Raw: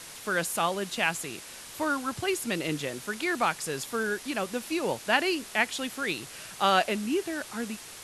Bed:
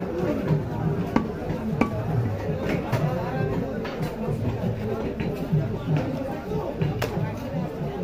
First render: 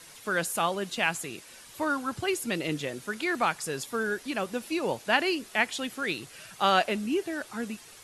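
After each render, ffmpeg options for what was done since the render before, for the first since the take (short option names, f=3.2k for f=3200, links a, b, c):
-af "afftdn=nr=8:nf=-45"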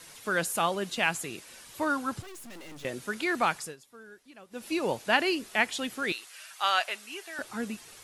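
-filter_complex "[0:a]asettb=1/sr,asplit=3[a][b][c];[a]atrim=end=2.224[d];[b]atrim=start=2.22:end=2.85,asetpts=PTS-STARTPTS,afade=t=in:d=0.004:c=qsin,afade=t=out:st=0.626:d=0.004:c=qsin,aeval=exprs='(tanh(178*val(0)+0.75)-tanh(0.75))/178':c=same[e];[c]atrim=start=2.846[f];[d][e]acrossfade=d=0.004:c1=hsin:c2=qsin[g];[g][f]acrossfade=d=0.004:c1=qsin:c2=hsin,asettb=1/sr,asplit=3[h][i][j];[h]atrim=end=6.124[k];[i]atrim=start=6.12:end=7.39,asetpts=PTS-STARTPTS,afade=t=in:d=0.004:c=qsin,afade=t=out:st=1.266:d=0.004:c=qsin,highpass=1k[l];[j]atrim=start=7.386[m];[k][l]acrossfade=d=0.004:c1=hsin:c2=qsin[n];[n][m]acrossfade=d=0.004:c1=qsin:c2=hsin,asplit=3[o][p][q];[o]atrim=end=3.76,asetpts=PTS-STARTPTS,afade=t=out:st=3.57:d=0.19:silence=0.1[r];[p]atrim=start=3.76:end=4.5,asetpts=PTS-STARTPTS,volume=-20dB[s];[q]atrim=start=4.5,asetpts=PTS-STARTPTS,afade=t=in:d=0.19:silence=0.1[t];[r][s][t]concat=n=3:v=0:a=1"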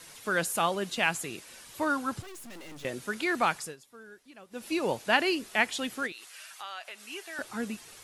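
-filter_complex "[0:a]asplit=3[a][b][c];[a]afade=t=out:st=6.06:d=0.02[d];[b]acompressor=threshold=-41dB:ratio=3:attack=3.2:release=140:knee=1:detection=peak,afade=t=in:st=6.06:d=0.02,afade=t=out:st=7.02:d=0.02[e];[c]afade=t=in:st=7.02:d=0.02[f];[d][e][f]amix=inputs=3:normalize=0"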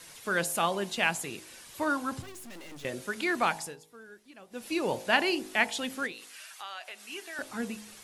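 -af "equalizer=f=1.3k:w=7.4:g=-2,bandreject=f=52.96:t=h:w=4,bandreject=f=105.92:t=h:w=4,bandreject=f=158.88:t=h:w=4,bandreject=f=211.84:t=h:w=4,bandreject=f=264.8:t=h:w=4,bandreject=f=317.76:t=h:w=4,bandreject=f=370.72:t=h:w=4,bandreject=f=423.68:t=h:w=4,bandreject=f=476.64:t=h:w=4,bandreject=f=529.6:t=h:w=4,bandreject=f=582.56:t=h:w=4,bandreject=f=635.52:t=h:w=4,bandreject=f=688.48:t=h:w=4,bandreject=f=741.44:t=h:w=4,bandreject=f=794.4:t=h:w=4,bandreject=f=847.36:t=h:w=4,bandreject=f=900.32:t=h:w=4,bandreject=f=953.28:t=h:w=4,bandreject=f=1.00624k:t=h:w=4,bandreject=f=1.0592k:t=h:w=4"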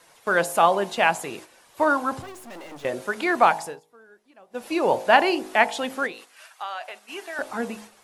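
-af "agate=range=-9dB:threshold=-46dB:ratio=16:detection=peak,equalizer=f=760:t=o:w=2.2:g=12.5"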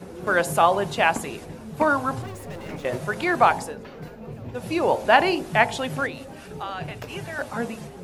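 -filter_complex "[1:a]volume=-10.5dB[a];[0:a][a]amix=inputs=2:normalize=0"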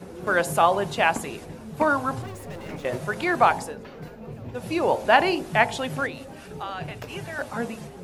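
-af "volume=-1dB"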